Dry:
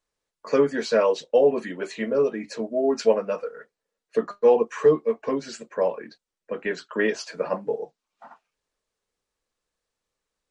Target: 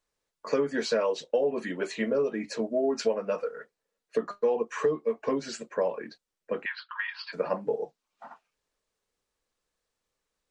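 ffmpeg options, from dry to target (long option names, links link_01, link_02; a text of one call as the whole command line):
ffmpeg -i in.wav -filter_complex "[0:a]acompressor=threshold=-23dB:ratio=5,asplit=3[link_01][link_02][link_03];[link_01]afade=type=out:start_time=6.64:duration=0.02[link_04];[link_02]asuperpass=centerf=2100:order=20:qfactor=0.54,afade=type=in:start_time=6.64:duration=0.02,afade=type=out:start_time=7.32:duration=0.02[link_05];[link_03]afade=type=in:start_time=7.32:duration=0.02[link_06];[link_04][link_05][link_06]amix=inputs=3:normalize=0" out.wav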